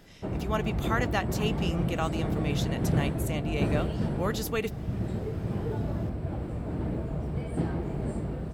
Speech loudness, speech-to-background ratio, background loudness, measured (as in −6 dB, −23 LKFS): −33.5 LKFS, −2.0 dB, −31.5 LKFS